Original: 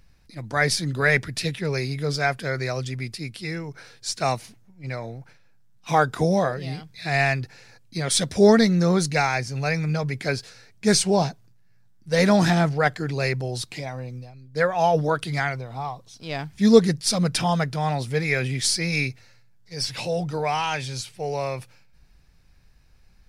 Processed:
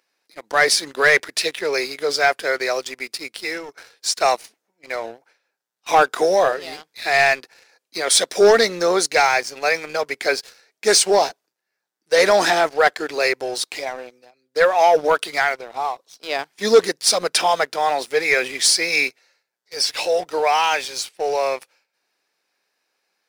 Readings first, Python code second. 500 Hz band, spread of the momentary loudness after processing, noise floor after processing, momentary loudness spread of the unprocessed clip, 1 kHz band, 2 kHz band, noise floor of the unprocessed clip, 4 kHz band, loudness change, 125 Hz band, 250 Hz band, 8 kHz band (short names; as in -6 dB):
+5.5 dB, 14 LU, -80 dBFS, 16 LU, +6.5 dB, +6.5 dB, -54 dBFS, +7.0 dB, +4.5 dB, -19.5 dB, -8.5 dB, +7.0 dB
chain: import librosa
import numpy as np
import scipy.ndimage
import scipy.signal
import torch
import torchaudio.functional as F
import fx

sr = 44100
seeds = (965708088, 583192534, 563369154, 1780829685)

y = scipy.signal.sosfilt(scipy.signal.butter(4, 370.0, 'highpass', fs=sr, output='sos'), x)
y = fx.leveller(y, sr, passes=2)